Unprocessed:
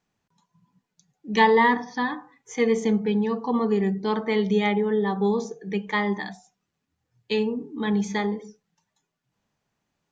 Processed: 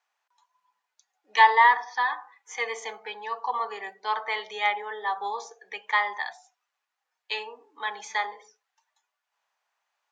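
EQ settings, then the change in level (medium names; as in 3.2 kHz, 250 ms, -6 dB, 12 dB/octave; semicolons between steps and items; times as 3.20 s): high-pass 760 Hz 24 dB/octave; treble shelf 3.3 kHz -8 dB; +4.5 dB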